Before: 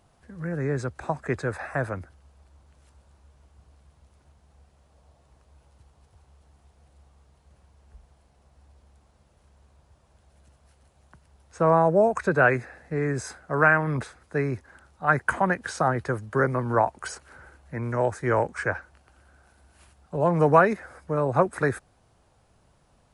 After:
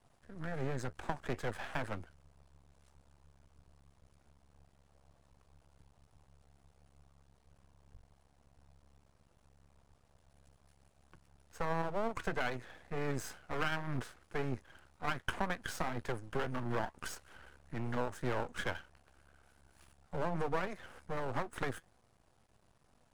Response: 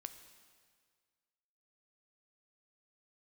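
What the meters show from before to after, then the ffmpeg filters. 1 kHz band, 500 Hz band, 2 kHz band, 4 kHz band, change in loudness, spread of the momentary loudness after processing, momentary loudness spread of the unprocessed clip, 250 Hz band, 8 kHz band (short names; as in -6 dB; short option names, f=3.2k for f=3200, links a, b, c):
-14.5 dB, -16.0 dB, -14.5 dB, 0.0 dB, -14.5 dB, 10 LU, 14 LU, -13.0 dB, -8.0 dB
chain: -af "flanger=delay=4:depth=2.3:regen=76:speed=2:shape=sinusoidal,acompressor=threshold=-28dB:ratio=10,aeval=exprs='max(val(0),0)':c=same,volume=1dB"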